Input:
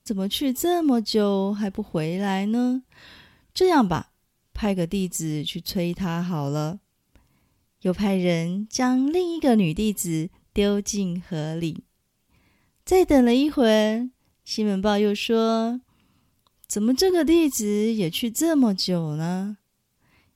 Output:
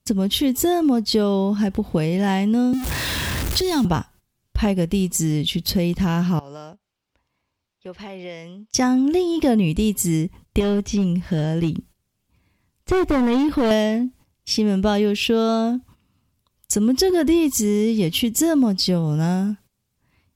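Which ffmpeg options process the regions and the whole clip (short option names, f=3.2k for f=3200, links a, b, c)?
-filter_complex "[0:a]asettb=1/sr,asplit=3[a][b][c];[a]atrim=end=2.734[d];[b]atrim=start=2.73:end=3.85,asetpts=PTS-STARTPTS,afade=t=in:d=0.004:c=qsin,afade=t=out:st=1.116:d=0.004:c=qsin,aeval=exprs='val(0)+0.5*0.0355*sgn(val(0))':c=same,acrossover=split=220|3000[e][f][g];[f]acompressor=threshold=-31dB:ratio=6:attack=3.2:release=140:knee=2.83:detection=peak[h];[e][h][g]amix=inputs=3:normalize=0[i];[c]atrim=start=3.846[j];[d][i]acrossfade=d=0.004:c1=hsin:c2=qsin[k];[k][j]acrossfade=d=0.004:c1=qsin:c2=hsin,asettb=1/sr,asplit=3[l][m][n];[l]atrim=end=6.394[o];[m]atrim=start=6.39:end=8.74,asetpts=PTS-STARTPTS,afade=t=in:d=0.004:c=qsin,afade=t=out:st=2.346:d=0.004:c=qsin,acrossover=split=390 5700:gain=0.2 1 0.2[p][q][r];[p][q][r]amix=inputs=3:normalize=0,acompressor=threshold=-54dB:ratio=2:attack=3.2:release=140:knee=1:detection=peak[s];[n]atrim=start=8.736[t];[o][s]acrossfade=d=0.004:c1=hsin:c2=qsin[u];[u][t]acrossfade=d=0.004:c1=qsin:c2=hsin,asettb=1/sr,asplit=3[v][w][x];[v]atrim=end=10.604[y];[w]atrim=start=10.6:end=13.71,asetpts=PTS-STARTPTS,afade=t=in:d=0.004:c=qsin,afade=t=out:st=3.106:d=0.004:c=qsin,acrossover=split=4000[z][aa];[aa]acompressor=threshold=-50dB:ratio=4:attack=1:release=60[ab];[z][ab]amix=inputs=2:normalize=0,asoftclip=type=hard:threshold=-20dB[ac];[x]atrim=start=13.706[ad];[y][ac]acrossfade=d=0.004:c1=hsin:c2=qsin[ae];[ae][ad]acrossfade=d=0.004:c1=qsin:c2=hsin,agate=range=-13dB:threshold=-49dB:ratio=16:detection=peak,equalizer=f=78:t=o:w=1.7:g=6.5,acompressor=threshold=-27dB:ratio=2.5,volume=8.5dB"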